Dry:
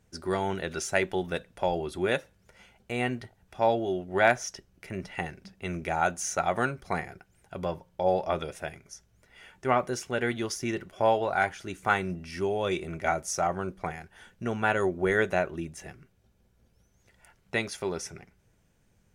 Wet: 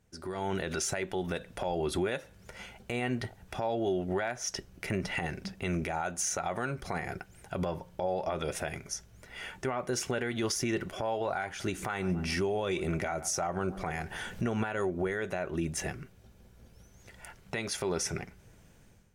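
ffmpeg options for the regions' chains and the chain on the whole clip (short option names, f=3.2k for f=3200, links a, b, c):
-filter_complex "[0:a]asettb=1/sr,asplit=3[a][b][c];[a]atrim=end=11.464[d];[b]atrim=start=11.46:end=14.9,asetpts=PTS-STARTPTS,afade=t=in:d=0.004:c=qsin,afade=t=out:st=3.436:d=0.004:c=qsin,acompressor=mode=upward:threshold=-41dB:ratio=2.5:attack=3.2:release=140:knee=2.83:detection=peak,asplit=2[e][f];[f]adelay=138,lowpass=f=1.3k:p=1,volume=-23dB,asplit=2[g][h];[h]adelay=138,lowpass=f=1.3k:p=1,volume=0.48,asplit=2[i][j];[j]adelay=138,lowpass=f=1.3k:p=1,volume=0.48[k];[e][g][i][k]amix=inputs=4:normalize=0,atrim=end_sample=151704[l];[c]atrim=start=14.896[m];[d][l]acrossfade=d=0.004:c1=hsin:c2=qsin[n];[n][m]acrossfade=d=0.004:c1=qsin:c2=hsin,acompressor=threshold=-33dB:ratio=12,alimiter=level_in=7.5dB:limit=-24dB:level=0:latency=1:release=70,volume=-7.5dB,dynaudnorm=f=140:g=5:m=13dB,volume=-3.5dB"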